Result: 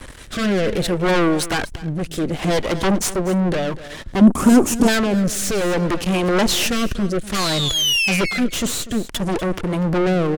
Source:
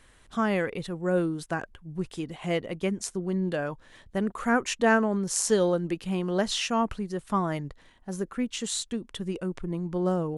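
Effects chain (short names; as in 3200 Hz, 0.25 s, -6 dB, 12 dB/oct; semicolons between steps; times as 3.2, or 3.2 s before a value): 7.34–8.4 painted sound fall 2000–4500 Hz -37 dBFS; harmonic tremolo 1.7 Hz, depth 50%, crossover 780 Hz; half-wave rectifier; added harmonics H 5 -17 dB, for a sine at -15.5 dBFS; in parallel at +1.5 dB: compressor, threshold -42 dBFS, peak gain reduction 14.5 dB; on the sum: sine folder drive 14 dB, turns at -13.5 dBFS; 4.21–4.88 graphic EQ 250/2000/4000/8000 Hz +12/-11/-12/+6 dB; on a send: echo 0.244 s -15.5 dB; on the sum: rotary speaker horn 0.6 Hz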